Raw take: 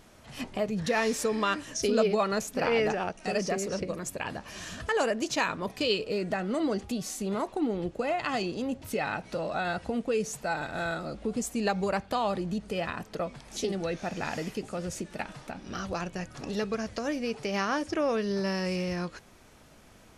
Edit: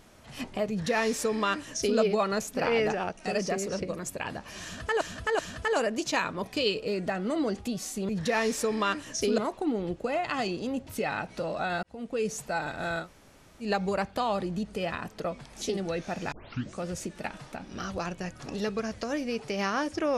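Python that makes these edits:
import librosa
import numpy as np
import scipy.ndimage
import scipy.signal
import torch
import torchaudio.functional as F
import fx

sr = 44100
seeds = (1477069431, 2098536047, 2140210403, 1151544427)

y = fx.edit(x, sr, fx.duplicate(start_s=0.7, length_s=1.29, to_s=7.33),
    fx.repeat(start_s=4.63, length_s=0.38, count=3),
    fx.fade_in_span(start_s=9.78, length_s=0.44),
    fx.room_tone_fill(start_s=10.99, length_s=0.6, crossfade_s=0.1),
    fx.tape_start(start_s=14.27, length_s=0.47), tone=tone)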